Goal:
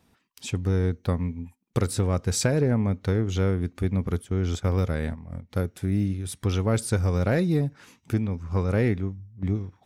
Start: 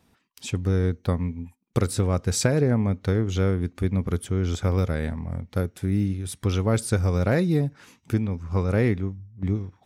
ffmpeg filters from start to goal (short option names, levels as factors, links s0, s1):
-filter_complex "[0:a]asplit=3[s0][s1][s2];[s0]afade=t=out:st=4.1:d=0.02[s3];[s1]agate=range=0.355:threshold=0.0398:ratio=16:detection=peak,afade=t=in:st=4.1:d=0.02,afade=t=out:st=5.49:d=0.02[s4];[s2]afade=t=in:st=5.49:d=0.02[s5];[s3][s4][s5]amix=inputs=3:normalize=0,acontrast=90,volume=0.398"